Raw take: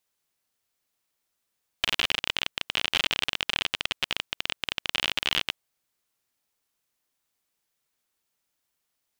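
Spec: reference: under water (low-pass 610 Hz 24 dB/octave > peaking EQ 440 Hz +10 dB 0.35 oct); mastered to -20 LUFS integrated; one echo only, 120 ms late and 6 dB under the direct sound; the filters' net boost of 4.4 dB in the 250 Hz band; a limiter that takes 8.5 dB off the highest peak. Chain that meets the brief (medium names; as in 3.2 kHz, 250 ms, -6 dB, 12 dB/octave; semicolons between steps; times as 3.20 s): peaking EQ 250 Hz +4.5 dB; peak limiter -14 dBFS; low-pass 610 Hz 24 dB/octave; peaking EQ 440 Hz +10 dB 0.35 oct; delay 120 ms -6 dB; trim +27 dB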